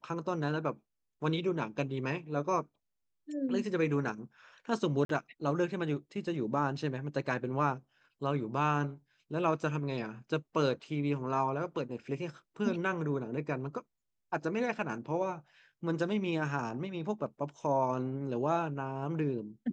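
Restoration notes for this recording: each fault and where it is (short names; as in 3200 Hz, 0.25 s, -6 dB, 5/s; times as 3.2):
5.05–5.09 gap 43 ms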